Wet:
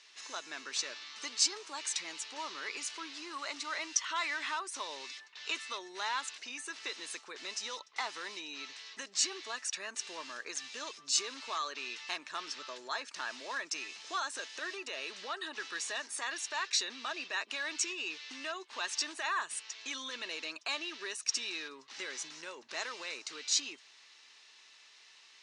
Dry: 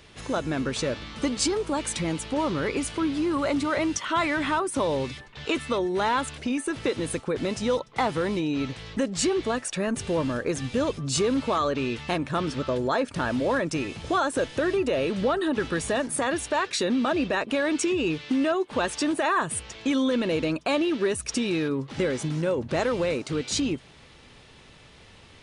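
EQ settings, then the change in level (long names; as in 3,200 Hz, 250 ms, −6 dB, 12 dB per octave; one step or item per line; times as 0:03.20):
loudspeaker in its box 420–5,700 Hz, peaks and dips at 530 Hz −10 dB, 760 Hz −4 dB, 1,400 Hz −4 dB, 2,300 Hz −4 dB, 3,300 Hz −8 dB, 4,700 Hz −4 dB
first difference
+8.0 dB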